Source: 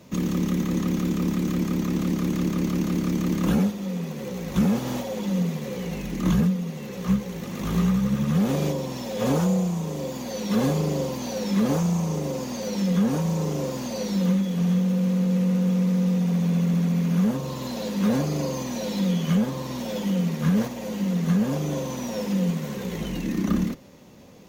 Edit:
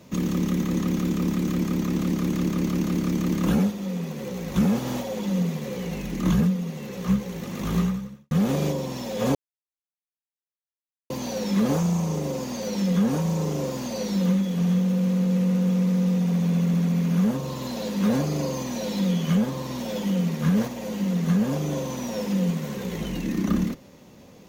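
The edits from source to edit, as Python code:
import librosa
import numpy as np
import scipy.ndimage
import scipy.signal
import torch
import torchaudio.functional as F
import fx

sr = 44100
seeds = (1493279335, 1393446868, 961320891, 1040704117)

y = fx.edit(x, sr, fx.fade_out_span(start_s=7.79, length_s=0.52, curve='qua'),
    fx.silence(start_s=9.35, length_s=1.75), tone=tone)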